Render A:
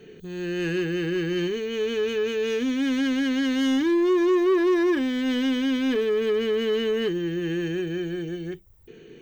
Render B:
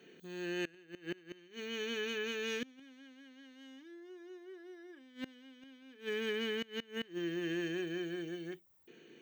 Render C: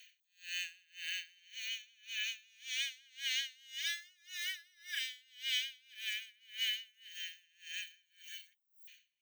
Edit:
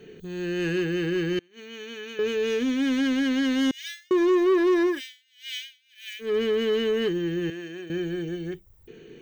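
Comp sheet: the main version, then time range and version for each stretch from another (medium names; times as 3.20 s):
A
1.39–2.19 s: from B
3.71–4.11 s: from C
4.93–6.27 s: from C, crossfade 0.16 s
7.50–7.90 s: from B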